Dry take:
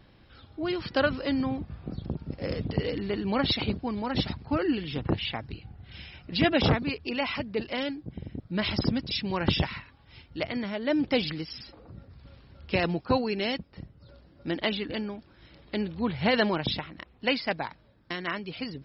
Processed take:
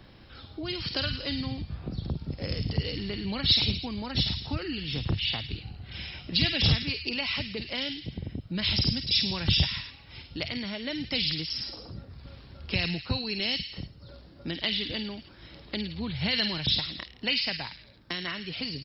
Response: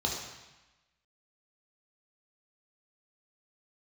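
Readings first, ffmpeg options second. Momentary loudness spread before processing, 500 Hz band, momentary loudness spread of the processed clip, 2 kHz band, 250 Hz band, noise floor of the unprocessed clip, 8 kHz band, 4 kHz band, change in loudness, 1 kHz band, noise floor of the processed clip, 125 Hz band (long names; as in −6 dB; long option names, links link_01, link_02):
17 LU, −9.0 dB, 17 LU, −1.0 dB, −5.0 dB, −58 dBFS, can't be measured, +6.5 dB, +0.5 dB, −9.0 dB, −52 dBFS, +1.5 dB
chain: -filter_complex "[0:a]equalizer=frequency=4900:width_type=o:width=0.96:gain=3,acrossover=split=150|2600[link_01][link_02][link_03];[link_02]acompressor=threshold=-41dB:ratio=6[link_04];[link_03]aecho=1:1:50|105|165.5|232|305.3:0.631|0.398|0.251|0.158|0.1[link_05];[link_01][link_04][link_05]amix=inputs=3:normalize=0,volume=4.5dB"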